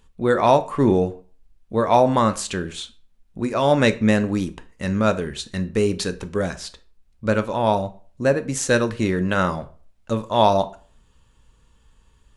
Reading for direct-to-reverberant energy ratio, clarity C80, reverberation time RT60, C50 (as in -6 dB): 9.5 dB, 21.5 dB, 0.40 s, 17.5 dB